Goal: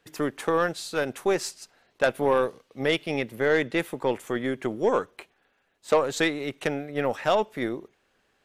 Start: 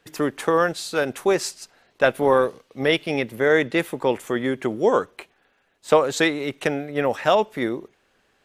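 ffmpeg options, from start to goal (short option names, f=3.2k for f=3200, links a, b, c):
-af "aeval=exprs='0.794*(cos(1*acos(clip(val(0)/0.794,-1,1)))-cos(1*PI/2))+0.126*(cos(4*acos(clip(val(0)/0.794,-1,1)))-cos(4*PI/2))+0.0891*(cos(6*acos(clip(val(0)/0.794,-1,1)))-cos(6*PI/2))':c=same,volume=-4.5dB"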